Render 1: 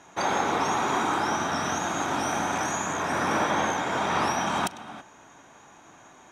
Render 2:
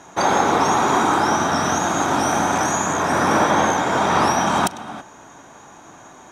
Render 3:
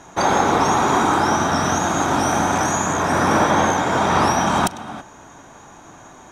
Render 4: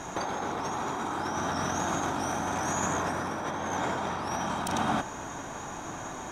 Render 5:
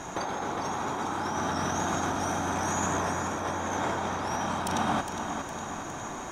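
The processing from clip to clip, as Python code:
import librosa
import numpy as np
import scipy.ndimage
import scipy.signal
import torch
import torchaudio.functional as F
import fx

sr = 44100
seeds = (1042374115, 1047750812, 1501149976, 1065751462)

y1 = fx.peak_eq(x, sr, hz=2500.0, db=-5.0, octaves=1.2)
y1 = y1 * librosa.db_to_amplitude(9.0)
y2 = fx.low_shelf(y1, sr, hz=90.0, db=10.5)
y3 = fx.over_compress(y2, sr, threshold_db=-27.0, ratio=-1.0)
y3 = y3 * librosa.db_to_amplitude(-4.0)
y4 = fx.echo_feedback(y3, sr, ms=410, feedback_pct=53, wet_db=-8)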